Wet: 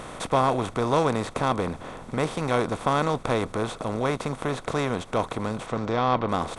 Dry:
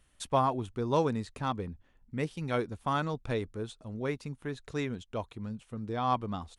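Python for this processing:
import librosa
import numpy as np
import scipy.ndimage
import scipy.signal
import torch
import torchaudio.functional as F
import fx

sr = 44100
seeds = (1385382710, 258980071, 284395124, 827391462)

y = fx.bin_compress(x, sr, power=0.4)
y = fx.lowpass(y, sr, hz=fx.line((5.66, 8100.0), (6.28, 4100.0)), slope=24, at=(5.66, 6.28), fade=0.02)
y = y * librosa.db_to_amplitude(2.0)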